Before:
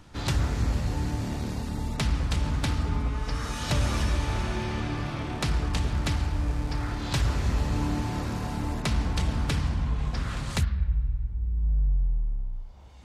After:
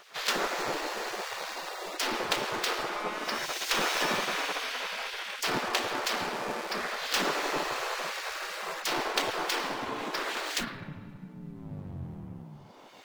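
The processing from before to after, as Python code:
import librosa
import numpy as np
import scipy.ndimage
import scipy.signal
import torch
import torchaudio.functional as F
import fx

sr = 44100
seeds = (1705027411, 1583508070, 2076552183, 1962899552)

y = scipy.ndimage.median_filter(x, 5, mode='constant')
y = fx.low_shelf(y, sr, hz=290.0, db=5.5)
y = fx.spec_gate(y, sr, threshold_db=-25, keep='weak')
y = F.gain(torch.from_numpy(y), 8.0).numpy()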